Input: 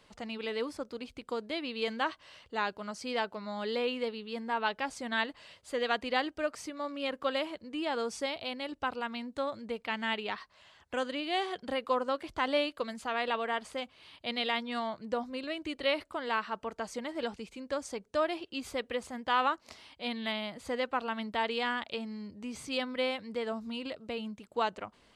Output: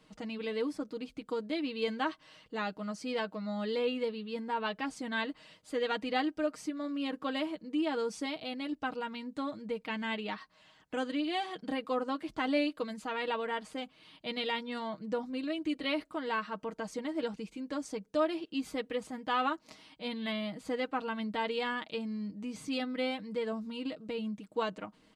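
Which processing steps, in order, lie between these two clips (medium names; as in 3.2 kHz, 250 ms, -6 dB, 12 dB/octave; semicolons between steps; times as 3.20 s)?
peaking EQ 230 Hz +13 dB 0.77 oct; comb 6.4 ms, depth 74%; trim -5 dB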